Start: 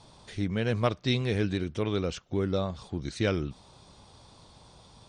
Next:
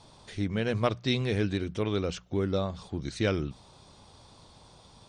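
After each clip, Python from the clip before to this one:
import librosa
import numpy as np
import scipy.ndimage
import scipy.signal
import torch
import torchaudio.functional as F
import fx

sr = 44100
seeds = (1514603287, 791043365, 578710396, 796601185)

y = fx.hum_notches(x, sr, base_hz=60, count=3)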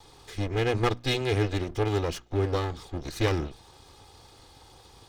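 y = fx.lower_of_two(x, sr, delay_ms=2.4)
y = y * 10.0 ** (3.5 / 20.0)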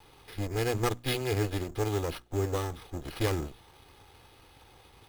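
y = fx.sample_hold(x, sr, seeds[0], rate_hz=7100.0, jitter_pct=0)
y = y * 10.0 ** (-3.5 / 20.0)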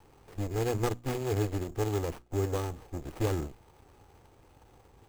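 y = scipy.signal.medfilt(x, 25)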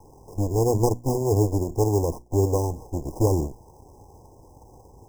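y = fx.brickwall_bandstop(x, sr, low_hz=1100.0, high_hz=4900.0)
y = y * 10.0 ** (9.0 / 20.0)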